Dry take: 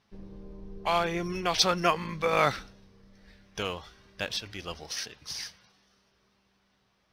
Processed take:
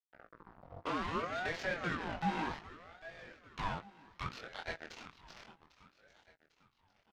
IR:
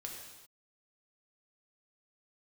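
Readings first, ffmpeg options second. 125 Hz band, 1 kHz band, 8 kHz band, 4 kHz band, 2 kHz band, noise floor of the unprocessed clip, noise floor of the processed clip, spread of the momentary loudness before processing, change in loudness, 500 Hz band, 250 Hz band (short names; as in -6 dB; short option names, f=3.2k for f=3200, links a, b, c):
-7.5 dB, -9.0 dB, -22.0 dB, -16.5 dB, -6.0 dB, -71 dBFS, -77 dBFS, 20 LU, -10.5 dB, -12.5 dB, -6.5 dB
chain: -filter_complex "[0:a]bandreject=f=50:t=h:w=6,bandreject=f=100:t=h:w=6,bandreject=f=150:t=h:w=6,bandreject=f=200:t=h:w=6,bandreject=f=250:t=h:w=6,bandreject=f=300:t=h:w=6,bandreject=f=350:t=h:w=6,bandreject=f=400:t=h:w=6,bandreject=f=450:t=h:w=6,adynamicequalizer=threshold=0.0112:dfrequency=550:dqfactor=1.1:tfrequency=550:tqfactor=1.1:attack=5:release=100:ratio=0.375:range=3.5:mode=boostabove:tftype=bell,alimiter=limit=-16dB:level=0:latency=1:release=33,acrossover=split=1500|3400[a][b][c];[a]acompressor=threshold=-32dB:ratio=4[d];[b]acompressor=threshold=-48dB:ratio=4[e];[c]acompressor=threshold=-47dB:ratio=4[f];[d][e][f]amix=inputs=3:normalize=0,volume=29.5dB,asoftclip=hard,volume=-29.5dB,acrusher=bits=5:mix=0:aa=0.5,highpass=260,lowpass=6k,adynamicsmooth=sensitivity=4:basefreq=2.9k,flanger=delay=17:depth=7.8:speed=0.31,asplit=2[g][h];[h]adelay=18,volume=-14dB[i];[g][i]amix=inputs=2:normalize=0,aecho=1:1:799|1598|2397|3196:0.158|0.0697|0.0307|0.0135,aeval=exprs='val(0)*sin(2*PI*730*n/s+730*0.6/0.64*sin(2*PI*0.64*n/s))':c=same,volume=4.5dB"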